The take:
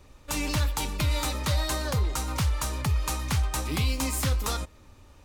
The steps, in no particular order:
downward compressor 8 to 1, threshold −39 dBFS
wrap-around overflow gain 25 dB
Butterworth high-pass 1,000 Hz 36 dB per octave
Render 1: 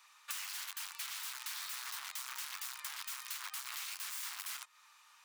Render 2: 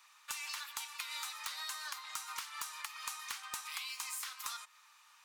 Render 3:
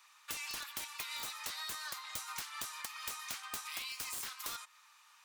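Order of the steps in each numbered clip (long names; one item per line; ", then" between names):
wrap-around overflow, then Butterworth high-pass, then downward compressor
Butterworth high-pass, then downward compressor, then wrap-around overflow
Butterworth high-pass, then wrap-around overflow, then downward compressor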